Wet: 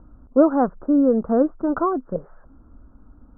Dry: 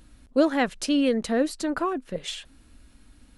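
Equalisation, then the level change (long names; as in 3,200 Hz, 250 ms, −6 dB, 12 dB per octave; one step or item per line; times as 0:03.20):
Butterworth low-pass 1,400 Hz 72 dB per octave
+5.5 dB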